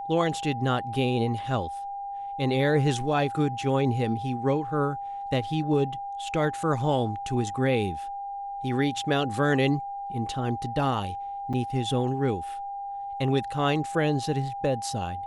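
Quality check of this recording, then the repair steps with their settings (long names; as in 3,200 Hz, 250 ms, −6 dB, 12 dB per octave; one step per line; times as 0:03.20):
whistle 800 Hz −32 dBFS
0:11.53–0:11.54: drop-out 5.9 ms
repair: notch filter 800 Hz, Q 30
repair the gap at 0:11.53, 5.9 ms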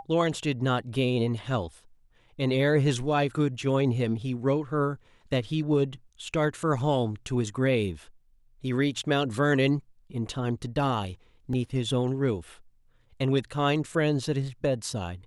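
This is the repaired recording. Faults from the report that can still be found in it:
none of them is left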